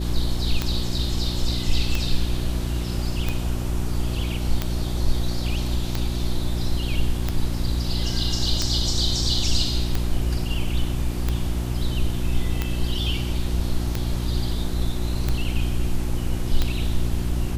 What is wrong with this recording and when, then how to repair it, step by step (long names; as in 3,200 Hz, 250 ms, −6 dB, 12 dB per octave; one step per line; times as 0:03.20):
mains hum 60 Hz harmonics 6 −26 dBFS
scratch tick 45 rpm −9 dBFS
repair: click removal
hum removal 60 Hz, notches 6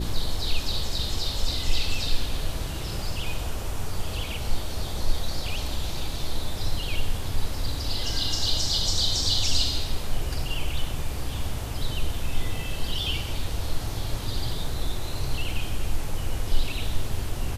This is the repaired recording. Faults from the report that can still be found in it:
none of them is left